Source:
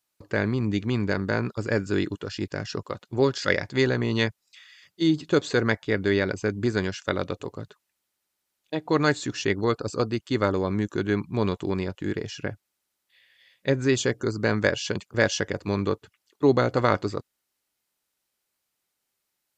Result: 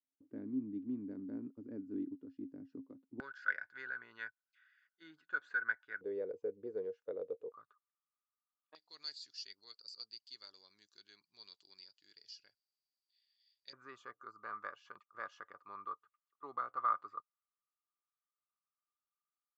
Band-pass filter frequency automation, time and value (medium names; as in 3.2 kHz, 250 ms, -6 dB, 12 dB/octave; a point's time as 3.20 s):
band-pass filter, Q 19
270 Hz
from 3.20 s 1.5 kHz
from 6.01 s 470 Hz
from 7.52 s 1.2 kHz
from 8.75 s 4.7 kHz
from 13.73 s 1.2 kHz